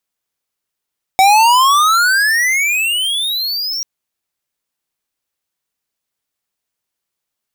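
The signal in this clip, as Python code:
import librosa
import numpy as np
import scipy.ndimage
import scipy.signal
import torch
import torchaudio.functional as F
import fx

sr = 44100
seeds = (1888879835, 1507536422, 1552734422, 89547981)

y = fx.riser_tone(sr, length_s=2.64, level_db=-8.0, wave='square', hz=753.0, rise_st=35.0, swell_db=-12)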